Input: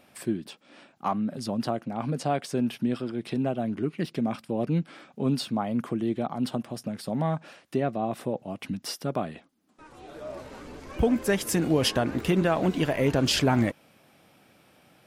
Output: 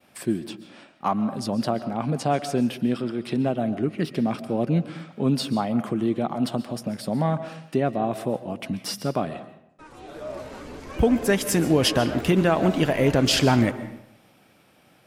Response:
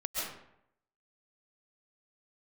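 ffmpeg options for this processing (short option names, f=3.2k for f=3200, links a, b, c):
-filter_complex "[0:a]agate=range=-33dB:threshold=-55dB:ratio=3:detection=peak,asplit=2[a][b];[1:a]atrim=start_sample=2205[c];[b][c]afir=irnorm=-1:irlink=0,volume=-15dB[d];[a][d]amix=inputs=2:normalize=0,volume=2.5dB"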